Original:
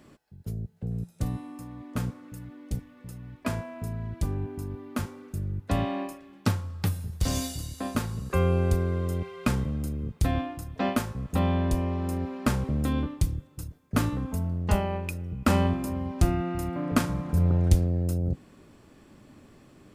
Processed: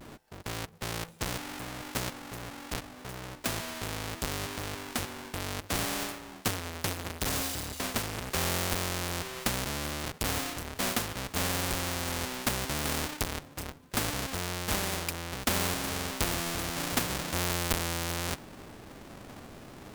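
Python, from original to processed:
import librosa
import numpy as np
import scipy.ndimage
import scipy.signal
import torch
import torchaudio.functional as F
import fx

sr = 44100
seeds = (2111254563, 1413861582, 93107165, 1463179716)

y = fx.halfwave_hold(x, sr)
y = fx.vibrato(y, sr, rate_hz=0.71, depth_cents=50.0)
y = fx.spectral_comp(y, sr, ratio=2.0)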